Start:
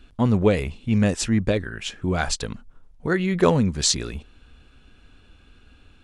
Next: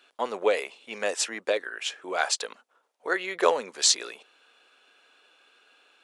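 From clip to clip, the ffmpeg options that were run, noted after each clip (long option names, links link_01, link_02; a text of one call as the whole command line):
ffmpeg -i in.wav -af "highpass=frequency=470:width=0.5412,highpass=frequency=470:width=1.3066" out.wav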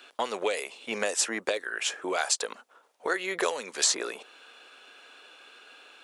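ffmpeg -i in.wav -filter_complex "[0:a]acrossover=split=1800|5900[link_01][link_02][link_03];[link_01]acompressor=threshold=-38dB:ratio=4[link_04];[link_02]acompressor=threshold=-45dB:ratio=4[link_05];[link_03]acompressor=threshold=-34dB:ratio=4[link_06];[link_04][link_05][link_06]amix=inputs=3:normalize=0,volume=8.5dB" out.wav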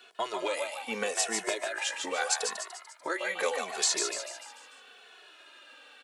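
ffmpeg -i in.wav -filter_complex "[0:a]asplit=2[link_01][link_02];[link_02]asplit=6[link_03][link_04][link_05][link_06][link_07][link_08];[link_03]adelay=147,afreqshift=140,volume=-5dB[link_09];[link_04]adelay=294,afreqshift=280,volume=-11.4dB[link_10];[link_05]adelay=441,afreqshift=420,volume=-17.8dB[link_11];[link_06]adelay=588,afreqshift=560,volume=-24.1dB[link_12];[link_07]adelay=735,afreqshift=700,volume=-30.5dB[link_13];[link_08]adelay=882,afreqshift=840,volume=-36.9dB[link_14];[link_09][link_10][link_11][link_12][link_13][link_14]amix=inputs=6:normalize=0[link_15];[link_01][link_15]amix=inputs=2:normalize=0,asplit=2[link_16][link_17];[link_17]adelay=2.3,afreqshift=-0.79[link_18];[link_16][link_18]amix=inputs=2:normalize=1" out.wav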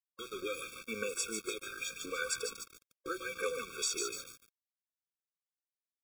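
ffmpeg -i in.wav -af "aeval=exprs='val(0)*gte(abs(val(0)),0.0141)':channel_layout=same,afftfilt=real='re*eq(mod(floor(b*sr/1024/540),2),0)':imag='im*eq(mod(floor(b*sr/1024/540),2),0)':win_size=1024:overlap=0.75,volume=-3.5dB" out.wav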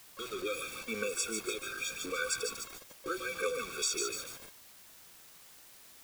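ffmpeg -i in.wav -af "aeval=exprs='val(0)+0.5*0.00562*sgn(val(0))':channel_layout=same,volume=1dB" out.wav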